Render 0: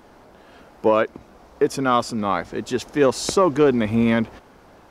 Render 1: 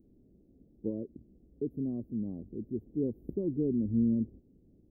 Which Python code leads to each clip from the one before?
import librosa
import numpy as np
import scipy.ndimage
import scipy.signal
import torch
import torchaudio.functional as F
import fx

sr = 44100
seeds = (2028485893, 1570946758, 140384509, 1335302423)

y = scipy.signal.sosfilt(scipy.signal.cheby2(4, 70, [1300.0, 8400.0], 'bandstop', fs=sr, output='sos'), x)
y = y * 10.0 ** (-8.0 / 20.0)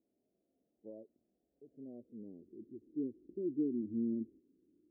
y = fx.hpss(x, sr, part='percussive', gain_db=-13)
y = fx.filter_sweep_bandpass(y, sr, from_hz=700.0, to_hz=330.0, start_s=1.57, end_s=2.67, q=4.0)
y = y * 10.0 ** (1.5 / 20.0)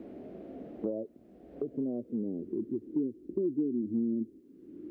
y = fx.band_squash(x, sr, depth_pct=100)
y = y * 10.0 ** (7.5 / 20.0)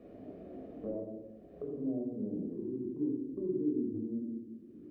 y = fx.room_shoebox(x, sr, seeds[0], volume_m3=3700.0, walls='furnished', distance_m=6.0)
y = y * 10.0 ** (-8.5 / 20.0)